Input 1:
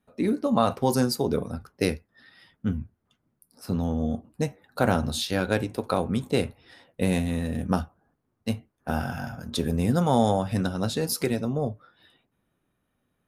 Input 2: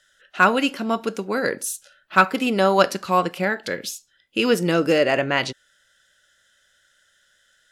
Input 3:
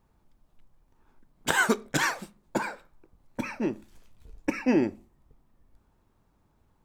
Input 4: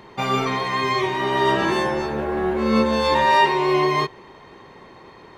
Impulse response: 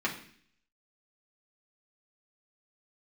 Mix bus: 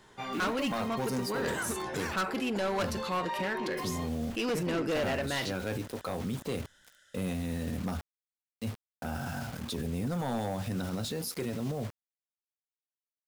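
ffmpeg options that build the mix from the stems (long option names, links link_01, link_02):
-filter_complex "[0:a]highpass=frequency=50:width=0.5412,highpass=frequency=50:width=1.3066,acrusher=bits=6:mix=0:aa=0.000001,adelay=150,volume=-2dB[link_01];[1:a]volume=-2dB[link_02];[2:a]volume=-5.5dB[link_03];[3:a]flanger=delay=16:depth=4.1:speed=1.1,volume=-11.5dB[link_04];[link_01][link_02][link_03][link_04]amix=inputs=4:normalize=0,volume=19.5dB,asoftclip=hard,volume=-19.5dB,alimiter=level_in=3dB:limit=-24dB:level=0:latency=1:release=19,volume=-3dB"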